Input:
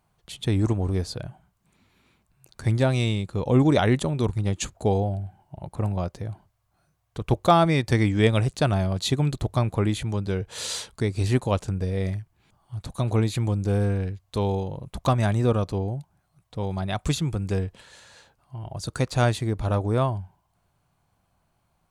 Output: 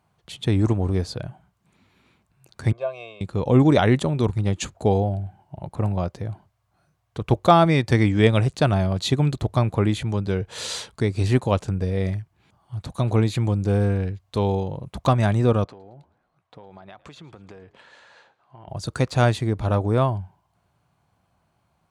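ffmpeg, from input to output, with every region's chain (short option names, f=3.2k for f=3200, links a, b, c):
-filter_complex "[0:a]asettb=1/sr,asplit=3[a][b][c];[a]atrim=end=2.724[d];[b]atrim=start=2.72:end=3.21,asetpts=PTS-STARTPTS,afade=t=in:d=0.004:c=qsin,afade=t=out:st=0.486:d=0.004:c=qsin,asplit=3[e][f][g];[e]bandpass=f=730:t=q:w=8,volume=0dB[h];[f]bandpass=f=1.09k:t=q:w=8,volume=-6dB[i];[g]bandpass=f=2.44k:t=q:w=8,volume=-9dB[j];[h][i][j]amix=inputs=3:normalize=0,equalizer=f=96:w=3.1:g=-12,aecho=1:1:1.9:0.89,atrim=end_sample=21609[k];[c]atrim=start=3.206[l];[d][k]acrossfade=d=0.004:c1=hsin:c2=qsin[m];[m][l]acrossfade=d=0.004:c1=qsin:c2=hsin,asettb=1/sr,asplit=3[n][o][p];[n]atrim=end=15.644[q];[o]atrim=start=15.64:end=18.68,asetpts=PTS-STARTPTS,afade=t=in:d=0.004:c=qsin,afade=t=out:st=3.036:d=0.004:c=qsin,bandpass=f=1.1k:t=q:w=0.54,acompressor=threshold=-42dB:ratio=12:attack=3.2:release=140:knee=1:detection=peak,asplit=5[r][s][t][u][v];[s]adelay=111,afreqshift=-58,volume=-21dB[w];[t]adelay=222,afreqshift=-116,volume=-26.4dB[x];[u]adelay=333,afreqshift=-174,volume=-31.7dB[y];[v]adelay=444,afreqshift=-232,volume=-37.1dB[z];[r][w][x][y][z]amix=inputs=5:normalize=0,atrim=end_sample=134064[aa];[p]atrim=start=18.676[ab];[q][aa]acrossfade=d=0.004:c1=hsin:c2=qsin[ac];[ac][ab]acrossfade=d=0.004:c1=qsin:c2=hsin,highpass=63,highshelf=f=7.2k:g=-8.5,volume=3dB"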